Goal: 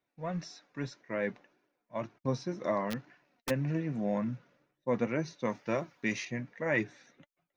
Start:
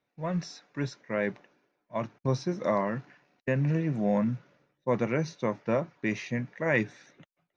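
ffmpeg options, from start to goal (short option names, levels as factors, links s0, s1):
-filter_complex "[0:a]flanger=delay=2.6:depth=1.8:regen=58:speed=1.9:shape=triangular,asplit=3[s0][s1][s2];[s0]afade=t=out:st=2.9:d=0.02[s3];[s1]aeval=exprs='(mod(21.1*val(0)+1,2)-1)/21.1':c=same,afade=t=in:st=2.9:d=0.02,afade=t=out:st=3.49:d=0.02[s4];[s2]afade=t=in:st=3.49:d=0.02[s5];[s3][s4][s5]amix=inputs=3:normalize=0,asettb=1/sr,asplit=3[s6][s7][s8];[s6]atrim=end=5.454[s9];[s7]atrim=start=5.45:end=6.25,asetpts=PTS-STARTPTS,afade=t=in:d=0.004:c=qsin,afade=t=out:st=0.796:d=0.004:c=qsin,highshelf=f=3000:g=11.5[s10];[s8]atrim=start=6.246[s11];[s9][s10]acrossfade=d=0.004:c1=hsin:c2=qsin[s12];[s12][s11]acrossfade=d=0.004:c1=qsin:c2=hsin"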